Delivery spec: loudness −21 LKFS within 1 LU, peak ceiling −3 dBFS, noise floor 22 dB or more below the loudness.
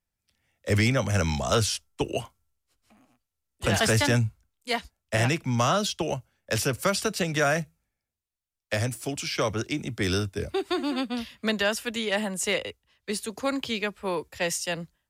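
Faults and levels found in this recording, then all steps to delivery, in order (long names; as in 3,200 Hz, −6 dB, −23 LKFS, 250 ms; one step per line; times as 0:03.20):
integrated loudness −27.0 LKFS; sample peak −11.0 dBFS; target loudness −21.0 LKFS
→ level +6 dB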